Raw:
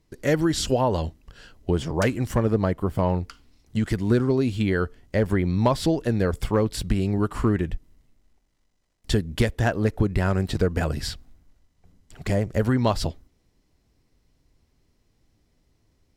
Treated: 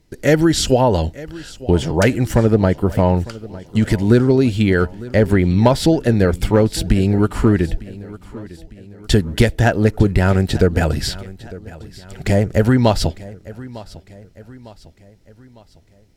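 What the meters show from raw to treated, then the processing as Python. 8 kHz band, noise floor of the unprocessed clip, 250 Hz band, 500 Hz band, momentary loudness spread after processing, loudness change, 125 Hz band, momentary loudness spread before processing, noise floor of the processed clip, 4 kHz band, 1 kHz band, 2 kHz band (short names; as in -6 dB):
+8.0 dB, -68 dBFS, +8.0 dB, +8.0 dB, 20 LU, +8.0 dB, +8.0 dB, 7 LU, -50 dBFS, +8.0 dB, +6.5 dB, +8.0 dB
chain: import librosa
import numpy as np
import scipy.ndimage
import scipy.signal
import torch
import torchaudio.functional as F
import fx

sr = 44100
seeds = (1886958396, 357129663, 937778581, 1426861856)

y = fx.notch(x, sr, hz=1100.0, q=5.2)
y = fx.echo_feedback(y, sr, ms=903, feedback_pct=48, wet_db=-19)
y = y * librosa.db_to_amplitude(8.0)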